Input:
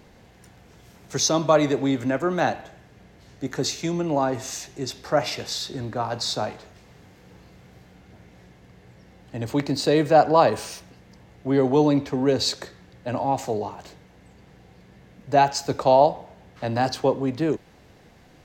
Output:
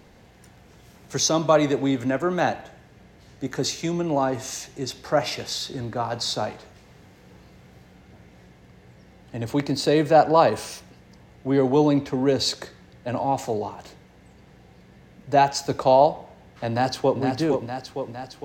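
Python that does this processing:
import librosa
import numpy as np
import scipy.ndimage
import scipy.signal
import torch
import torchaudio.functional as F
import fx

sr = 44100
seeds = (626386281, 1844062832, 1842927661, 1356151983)

y = fx.echo_throw(x, sr, start_s=16.69, length_s=0.51, ms=460, feedback_pct=65, wet_db=-5.5)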